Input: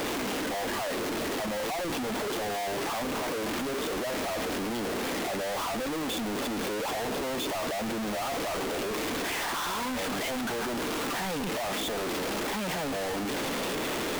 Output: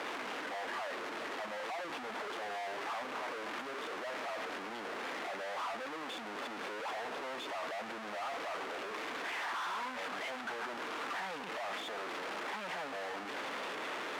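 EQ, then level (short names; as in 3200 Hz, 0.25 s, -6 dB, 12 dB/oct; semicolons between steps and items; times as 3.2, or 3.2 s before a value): band-pass 1400 Hz, Q 0.79; -4.0 dB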